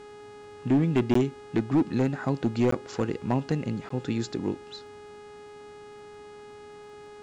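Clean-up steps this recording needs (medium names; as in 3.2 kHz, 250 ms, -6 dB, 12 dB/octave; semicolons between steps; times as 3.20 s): clip repair -17 dBFS; de-click; de-hum 416.1 Hz, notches 24; interpolate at 1.14/2.71/3.89 s, 14 ms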